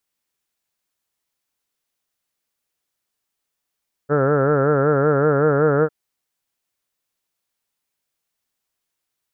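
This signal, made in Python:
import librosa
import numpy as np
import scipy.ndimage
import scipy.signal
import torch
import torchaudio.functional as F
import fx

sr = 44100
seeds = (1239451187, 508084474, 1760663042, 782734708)

y = fx.vowel(sr, seeds[0], length_s=1.8, word='heard', hz=140.0, glide_st=1.0, vibrato_hz=5.3, vibrato_st=1.05)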